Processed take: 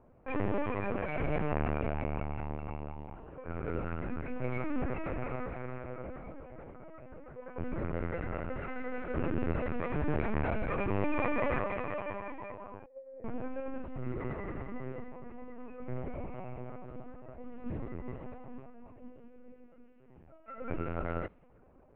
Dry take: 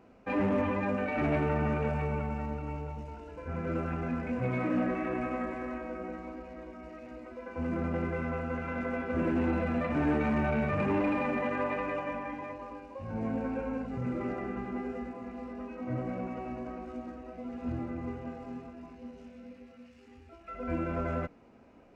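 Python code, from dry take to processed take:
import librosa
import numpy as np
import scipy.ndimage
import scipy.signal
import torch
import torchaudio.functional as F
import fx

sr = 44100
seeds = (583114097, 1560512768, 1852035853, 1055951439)

y = fx.formant_cascade(x, sr, vowel='e', at=(12.85, 13.25))
y = fx.env_lowpass(y, sr, base_hz=1200.0, full_db=-27.5)
y = fx.lpc_vocoder(y, sr, seeds[0], excitation='pitch_kept', order=10)
y = fx.env_flatten(y, sr, amount_pct=70, at=(11.01, 11.58), fade=0.02)
y = y * 10.0 ** (-2.5 / 20.0)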